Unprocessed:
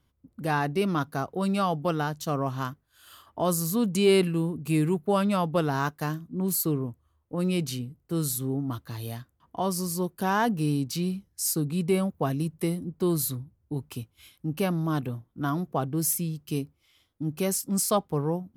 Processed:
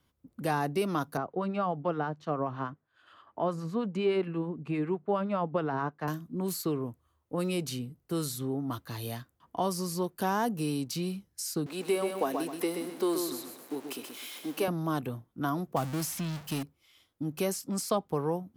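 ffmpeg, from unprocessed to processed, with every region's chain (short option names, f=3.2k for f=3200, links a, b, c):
-filter_complex "[0:a]asettb=1/sr,asplit=3[a][b][c];[a]atrim=end=1.174[d];[b]atrim=start=1.17:end=6.08,asetpts=PTS-STARTPTS,afade=t=in:d=0.004:c=qsin,afade=t=out:st=4.906:d=0.004:c=qsin,acrossover=split=930[e][f];[e]aeval=exprs='val(0)*(1-0.5/2+0.5/2*cos(2*PI*9.6*n/s))':c=same[g];[f]aeval=exprs='val(0)*(1-0.5/2-0.5/2*cos(2*PI*9.6*n/s))':c=same[h];[g][h]amix=inputs=2:normalize=0,highpass=110,lowpass=2k[i];[c]atrim=start=6.076[j];[d][i]acrossfade=d=0.004:c1=hsin:c2=qsin[k];[k][j]acrossfade=d=0.004:c1=qsin:c2=hsin,asettb=1/sr,asplit=3[l][m][n];[l]atrim=end=11.664[o];[m]atrim=start=11.66:end=14.68,asetpts=PTS-STARTPTS,afade=t=in:d=0.004:c=qsin,afade=t=out:st=3.016:d=0.004:c=qsin,aeval=exprs='val(0)+0.5*0.00891*sgn(val(0))':c=same,highpass=f=280:w=0.5412,highpass=f=280:w=1.3066,aecho=1:1:128|256|384|512:0.447|0.138|0.0429|0.0133,atrim=end_sample=133182[p];[n]atrim=start=14.676[q];[o][p]acrossfade=d=0.004:c1=hsin:c2=qsin[r];[r][q]acrossfade=d=0.004:c1=qsin:c2=hsin,asettb=1/sr,asplit=3[s][t][u];[s]atrim=end=15.764[v];[t]atrim=start=15.76:end=16.63,asetpts=PTS-STARTPTS,afade=t=in:d=0.004:c=qsin,afade=t=out:st=0.866:d=0.004:c=qsin,aeval=exprs='val(0)+0.5*0.0282*sgn(val(0))':c=same,equalizer=f=420:w=2.3:g=-10.5,agate=range=-33dB:threshold=-31dB:ratio=3:release=100:detection=peak[w];[u]atrim=start=16.626[x];[v][w]acrossfade=d=0.004:c1=hsin:c2=qsin[y];[y][x]acrossfade=d=0.004:c1=qsin:c2=hsin,lowshelf=f=120:g=-9.5,acrossover=split=380|1100|5600[z][aa][ab][ac];[z]acompressor=threshold=-34dB:ratio=4[ad];[aa]acompressor=threshold=-30dB:ratio=4[ae];[ab]acompressor=threshold=-41dB:ratio=4[af];[ac]acompressor=threshold=-43dB:ratio=4[ag];[ad][ae][af][ag]amix=inputs=4:normalize=0,volume=1.5dB"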